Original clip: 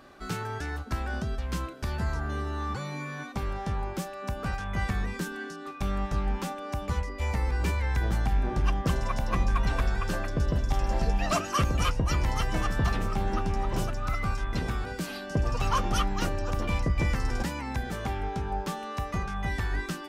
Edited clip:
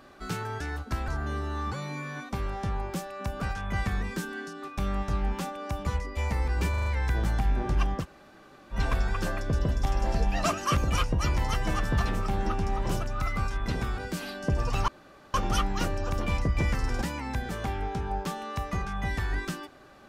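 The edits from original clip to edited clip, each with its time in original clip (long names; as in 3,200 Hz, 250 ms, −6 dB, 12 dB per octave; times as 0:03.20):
0:01.08–0:02.11: remove
0:07.73: stutter 0.04 s, 5 plays
0:08.88–0:09.62: fill with room tone, crossfade 0.10 s
0:15.75: splice in room tone 0.46 s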